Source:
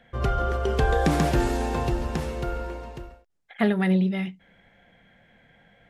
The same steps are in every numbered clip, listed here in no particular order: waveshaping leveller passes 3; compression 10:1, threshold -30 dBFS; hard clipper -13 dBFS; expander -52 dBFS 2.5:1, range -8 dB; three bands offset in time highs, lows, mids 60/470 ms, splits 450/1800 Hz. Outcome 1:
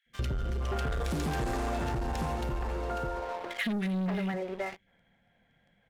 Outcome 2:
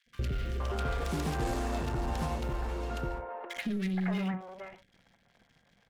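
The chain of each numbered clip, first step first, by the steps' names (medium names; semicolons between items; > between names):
expander > three bands offset in time > hard clipper > waveshaping leveller > compression; hard clipper > waveshaping leveller > compression > three bands offset in time > expander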